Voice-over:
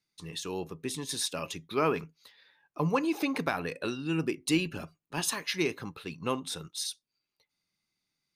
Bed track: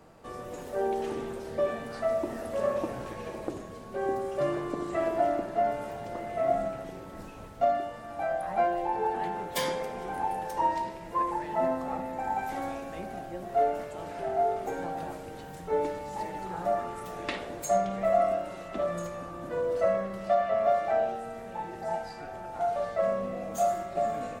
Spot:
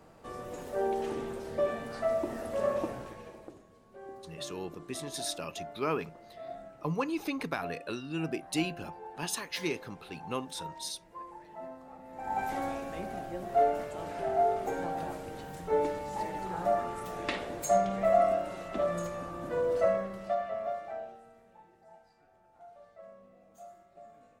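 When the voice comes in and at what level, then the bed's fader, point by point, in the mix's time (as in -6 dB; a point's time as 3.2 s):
4.05 s, -4.0 dB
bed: 2.85 s -1.5 dB
3.64 s -16.5 dB
11.99 s -16.5 dB
12.4 s 0 dB
19.78 s 0 dB
21.88 s -24 dB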